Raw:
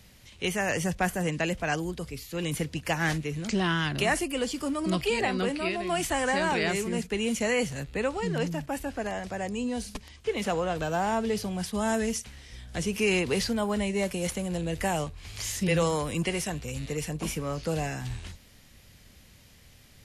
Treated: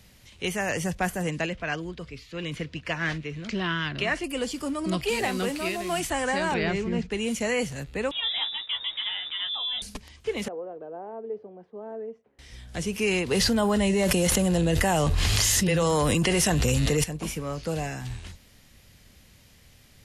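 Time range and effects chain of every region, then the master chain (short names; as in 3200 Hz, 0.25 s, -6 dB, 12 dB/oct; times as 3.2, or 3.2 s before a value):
1.46–4.24 LPF 3500 Hz + tilt shelf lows -3 dB, about 1300 Hz + notch 810 Hz, Q 6.3
5.08–6 delta modulation 64 kbps, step -37 dBFS + high shelf 5500 Hz +5.5 dB
6.54–7.11 Bessel low-pass 3900 Hz, order 4 + low shelf 150 Hz +9 dB + mismatched tape noise reduction encoder only
8.11–9.82 inverted band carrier 3700 Hz + doubler 14 ms -6 dB
10.48–12.39 ladder band-pass 500 Hz, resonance 45% + tilt -2 dB/oct
13.31–17.04 notch 2300 Hz, Q 11 + fast leveller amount 100%
whole clip: dry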